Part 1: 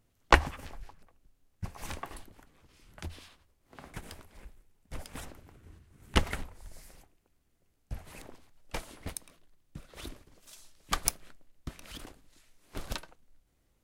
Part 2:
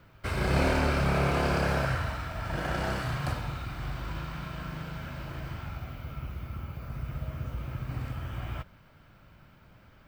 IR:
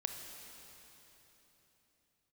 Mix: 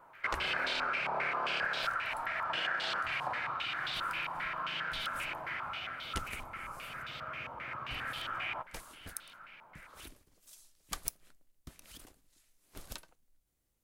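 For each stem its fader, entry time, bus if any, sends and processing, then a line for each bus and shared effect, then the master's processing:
-10.5 dB, 0.00 s, no send, none
+0.5 dB, 0.00 s, no send, high-pass 510 Hz 6 dB/octave; tilt EQ +2.5 dB/octave; step-sequenced low-pass 7.5 Hz 930–3600 Hz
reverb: none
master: treble shelf 5.9 kHz +11.5 dB; compression 5:1, threshold -32 dBFS, peak gain reduction 12.5 dB

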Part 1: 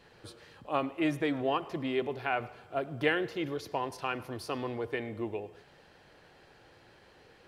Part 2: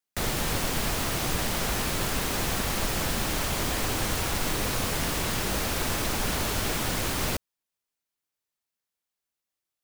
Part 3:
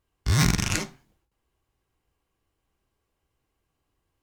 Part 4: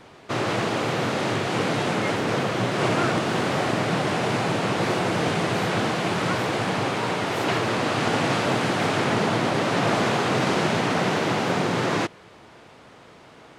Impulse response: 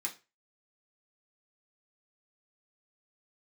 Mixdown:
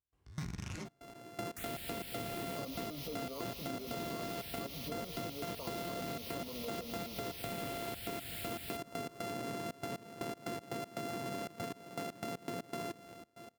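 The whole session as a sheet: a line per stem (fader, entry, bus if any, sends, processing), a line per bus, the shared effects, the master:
+2.5 dB, 1.85 s, bus A, no send, sample-and-hold 24×; static phaser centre 520 Hz, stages 8
0.0 dB, 1.40 s, bus A, no send, amplifier tone stack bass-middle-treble 5-5-5
-1.0 dB, 0.00 s, bus B, no send, compression 2.5:1, threshold -37 dBFS, peak gain reduction 13.5 dB; tilt EQ -1.5 dB/octave
-7.0 dB, 0.85 s, bus B, no send, sorted samples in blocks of 64 samples; peaking EQ 330 Hz +8 dB 1.9 oct
bus A: 0.0 dB, touch-sensitive phaser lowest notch 450 Hz, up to 1.5 kHz, full sweep at -32 dBFS; peak limiter -28.5 dBFS, peak gain reduction 12.5 dB
bus B: 0.0 dB, trance gate ".x.xxxx.x..x.x" 119 bpm -24 dB; peak limiter -24 dBFS, peak gain reduction 10 dB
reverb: none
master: high-pass 55 Hz; compression 4:1, threshold -39 dBFS, peak gain reduction 10 dB

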